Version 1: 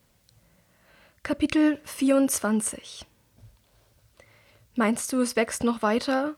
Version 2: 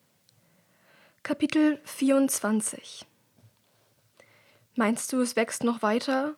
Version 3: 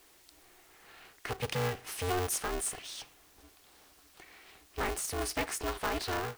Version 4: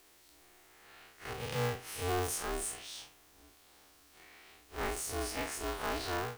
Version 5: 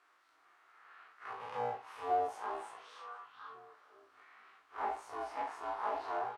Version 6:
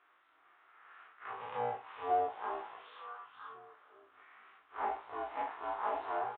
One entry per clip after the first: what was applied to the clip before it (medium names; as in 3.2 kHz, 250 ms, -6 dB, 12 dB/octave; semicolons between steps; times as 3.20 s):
high-pass 120 Hz 24 dB/octave; trim -1.5 dB
bass shelf 450 Hz -9 dB; power-law waveshaper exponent 0.7; polarity switched at an audio rate 180 Hz; trim -8 dB
spectral blur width 87 ms
doubling 18 ms -4 dB; repeats whose band climbs or falls 486 ms, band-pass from 3.2 kHz, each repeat -1.4 oct, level -7 dB; auto-wah 470–1300 Hz, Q 3.4, down, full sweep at -23 dBFS; trim +5 dB
resampled via 8 kHz; trim +1 dB